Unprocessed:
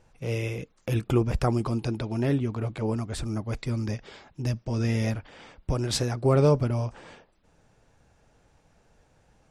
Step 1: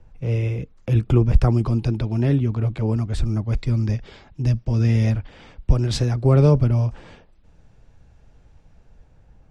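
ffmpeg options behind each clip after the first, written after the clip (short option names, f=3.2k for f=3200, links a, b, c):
-filter_complex "[0:a]aemphasis=mode=reproduction:type=bsi,acrossover=split=190|430|2400[a][b][c][d];[d]dynaudnorm=f=460:g=5:m=6dB[e];[a][b][c][e]amix=inputs=4:normalize=0"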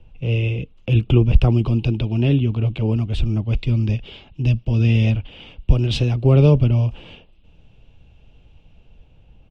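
-af "firequalizer=gain_entry='entry(330,0);entry(1800,-9);entry(2800,13);entry(4400,-4);entry(7000,-10)':delay=0.05:min_phase=1,volume=2dB"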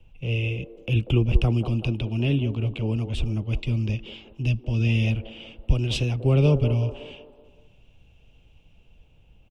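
-filter_complex "[0:a]acrossover=split=290|1200[a][b][c];[b]aecho=1:1:189|378|567|756|945|1134:0.501|0.241|0.115|0.0554|0.0266|0.0128[d];[c]aexciter=amount=1.9:drive=3.7:freq=2.3k[e];[a][d][e]amix=inputs=3:normalize=0,volume=-6dB"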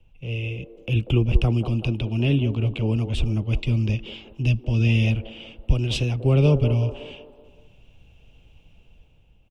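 -af "dynaudnorm=f=280:g=5:m=6.5dB,volume=-3.5dB"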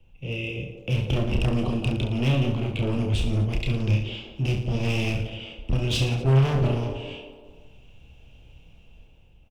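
-af "volume=20.5dB,asoftclip=hard,volume=-20.5dB,aecho=1:1:30|67.5|114.4|173|246.2:0.631|0.398|0.251|0.158|0.1"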